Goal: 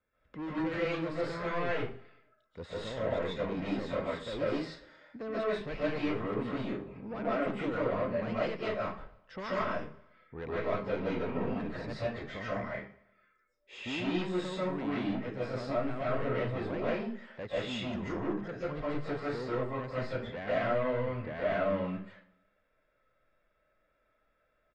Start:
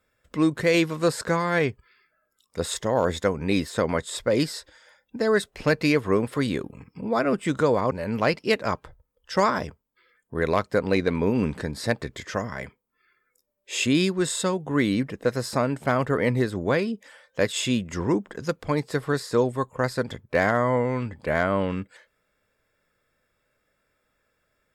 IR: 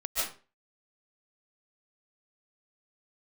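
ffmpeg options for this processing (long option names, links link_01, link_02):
-filter_complex "[0:a]acrossover=split=540|1200[link_01][link_02][link_03];[link_02]alimiter=level_in=1dB:limit=-24dB:level=0:latency=1,volume=-1dB[link_04];[link_01][link_04][link_03]amix=inputs=3:normalize=0,asoftclip=type=tanh:threshold=-25dB,lowpass=3500,aemphasis=mode=reproduction:type=50kf,aecho=1:1:115|230|345|460:0.0708|0.0382|0.0206|0.0111[link_05];[1:a]atrim=start_sample=2205[link_06];[link_05][link_06]afir=irnorm=-1:irlink=0,volume=-8.5dB"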